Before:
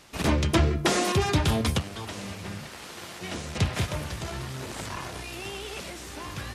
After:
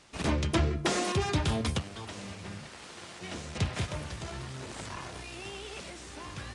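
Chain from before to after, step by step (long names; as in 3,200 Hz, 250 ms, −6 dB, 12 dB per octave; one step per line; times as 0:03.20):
downsampling to 22,050 Hz
level −5 dB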